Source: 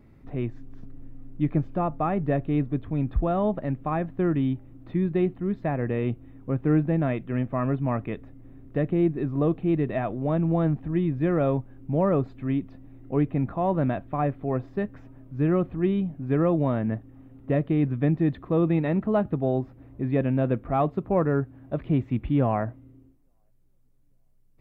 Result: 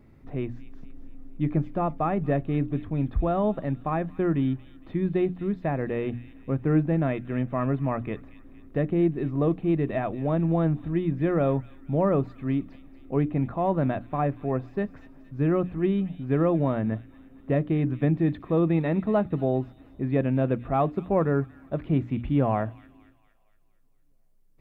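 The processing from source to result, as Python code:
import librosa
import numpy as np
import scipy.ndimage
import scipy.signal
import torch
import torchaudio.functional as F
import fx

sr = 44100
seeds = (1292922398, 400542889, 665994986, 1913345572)

p1 = fx.hum_notches(x, sr, base_hz=60, count=5)
y = p1 + fx.echo_wet_highpass(p1, sr, ms=232, feedback_pct=50, hz=2800.0, wet_db=-10, dry=0)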